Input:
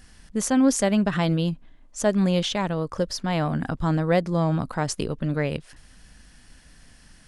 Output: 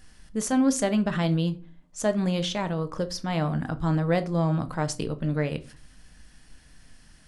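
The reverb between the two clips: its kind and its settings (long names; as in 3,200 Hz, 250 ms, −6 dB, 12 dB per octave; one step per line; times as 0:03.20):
rectangular room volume 210 cubic metres, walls furnished, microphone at 0.53 metres
level −3.5 dB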